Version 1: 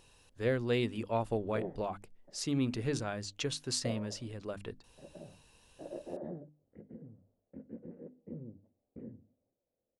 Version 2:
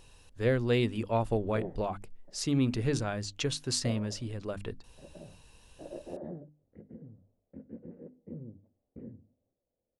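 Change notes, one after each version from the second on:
speech +3.0 dB; master: add low shelf 90 Hz +8.5 dB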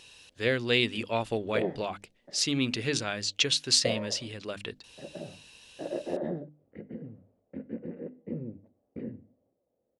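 background +9.5 dB; master: add weighting filter D

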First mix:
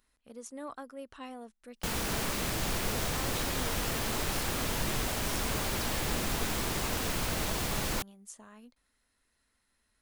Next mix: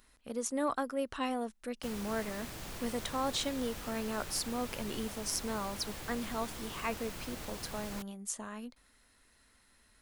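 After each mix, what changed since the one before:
speech +9.5 dB; background -12.0 dB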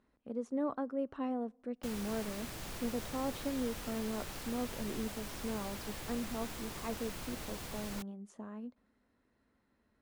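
speech: add band-pass 260 Hz, Q 0.62; reverb: on, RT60 1.2 s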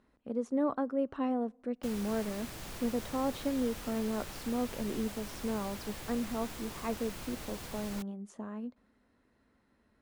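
speech +4.5 dB

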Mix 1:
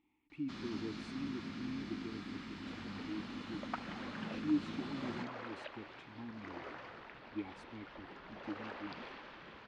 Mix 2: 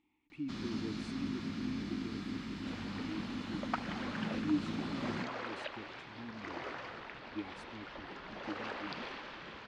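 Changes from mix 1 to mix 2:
first sound: add low shelf 440 Hz +7 dB; second sound +4.5 dB; master: add high shelf 4300 Hz +7 dB

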